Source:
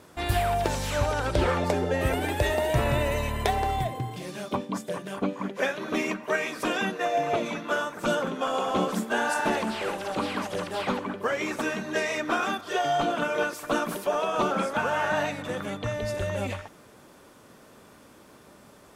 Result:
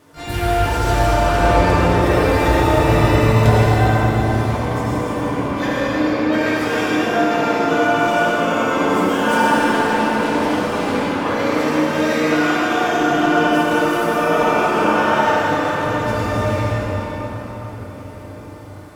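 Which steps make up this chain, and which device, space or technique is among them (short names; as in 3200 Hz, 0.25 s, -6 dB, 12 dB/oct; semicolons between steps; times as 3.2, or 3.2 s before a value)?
5.82–6.33 air absorption 460 m; shimmer-style reverb (harmoniser +12 st -8 dB; reverb RT60 5.2 s, pre-delay 68 ms, DRR -6.5 dB); FDN reverb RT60 1.4 s, low-frequency decay 1.2×, high-frequency decay 0.3×, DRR -3 dB; gain -3 dB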